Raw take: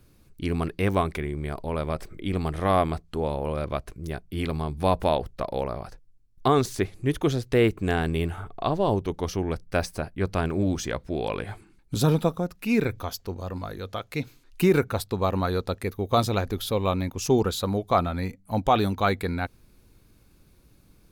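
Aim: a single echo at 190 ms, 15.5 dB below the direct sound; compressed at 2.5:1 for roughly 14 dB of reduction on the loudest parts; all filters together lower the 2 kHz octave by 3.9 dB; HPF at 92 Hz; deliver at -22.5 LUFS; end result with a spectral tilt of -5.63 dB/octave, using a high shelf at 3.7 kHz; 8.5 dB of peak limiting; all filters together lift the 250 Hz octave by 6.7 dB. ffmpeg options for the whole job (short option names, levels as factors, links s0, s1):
-af "highpass=92,equalizer=f=250:t=o:g=9,equalizer=f=2000:t=o:g=-8,highshelf=f=3700:g=9,acompressor=threshold=0.0224:ratio=2.5,alimiter=limit=0.0794:level=0:latency=1,aecho=1:1:190:0.168,volume=4.22"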